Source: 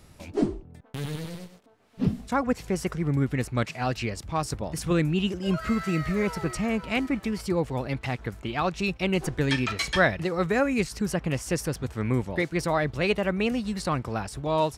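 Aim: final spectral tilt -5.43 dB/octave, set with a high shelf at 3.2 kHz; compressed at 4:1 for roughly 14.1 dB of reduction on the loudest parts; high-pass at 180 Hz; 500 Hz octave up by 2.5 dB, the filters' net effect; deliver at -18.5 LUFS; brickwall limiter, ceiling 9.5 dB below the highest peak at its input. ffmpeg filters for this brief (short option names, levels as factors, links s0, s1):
-af "highpass=180,equalizer=f=500:t=o:g=3.5,highshelf=f=3200:g=-6,acompressor=threshold=0.02:ratio=4,volume=13.3,alimiter=limit=0.422:level=0:latency=1"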